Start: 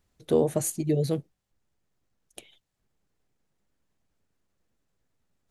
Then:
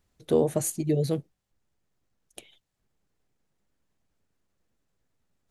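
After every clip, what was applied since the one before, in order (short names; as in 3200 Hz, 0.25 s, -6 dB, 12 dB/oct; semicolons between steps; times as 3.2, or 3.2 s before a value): nothing audible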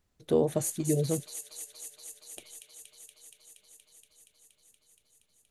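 thin delay 0.236 s, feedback 83%, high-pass 2600 Hz, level -4 dB; gain -2.5 dB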